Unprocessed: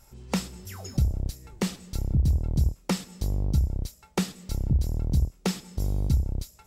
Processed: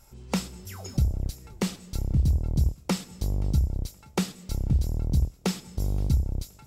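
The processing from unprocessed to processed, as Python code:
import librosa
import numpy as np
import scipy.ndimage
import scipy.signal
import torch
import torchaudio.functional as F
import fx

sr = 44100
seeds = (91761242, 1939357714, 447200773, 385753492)

y = fx.notch(x, sr, hz=1800.0, q=20.0)
y = fx.echo_thinned(y, sr, ms=523, feedback_pct=28, hz=160.0, wet_db=-23.5)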